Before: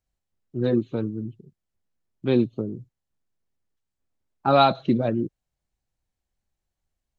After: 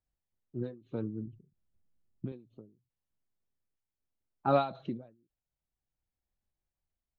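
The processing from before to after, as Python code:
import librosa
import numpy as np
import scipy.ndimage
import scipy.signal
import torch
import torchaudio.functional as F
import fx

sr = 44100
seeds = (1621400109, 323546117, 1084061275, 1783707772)

y = fx.low_shelf(x, sr, hz=350.0, db=11.5, at=(1.27, 2.32))
y = y * (1.0 - 0.33 / 2.0 + 0.33 / 2.0 * np.cos(2.0 * np.pi * 0.62 * (np.arange(len(y)) / sr)))
y = fx.high_shelf(y, sr, hz=3300.0, db=-9.5)
y = fx.end_taper(y, sr, db_per_s=140.0)
y = y * 10.0 ** (-5.5 / 20.0)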